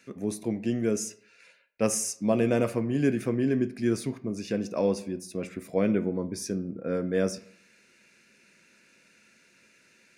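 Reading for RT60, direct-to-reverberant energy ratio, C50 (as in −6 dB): 0.60 s, 10.5 dB, 16.0 dB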